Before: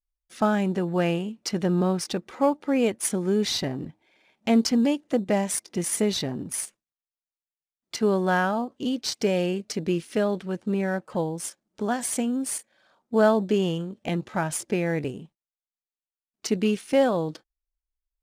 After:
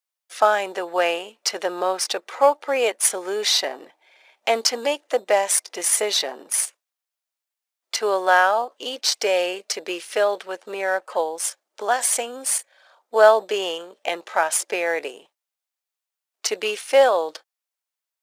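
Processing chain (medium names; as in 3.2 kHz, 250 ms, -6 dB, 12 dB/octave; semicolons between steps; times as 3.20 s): high-pass 520 Hz 24 dB/octave; trim +8.5 dB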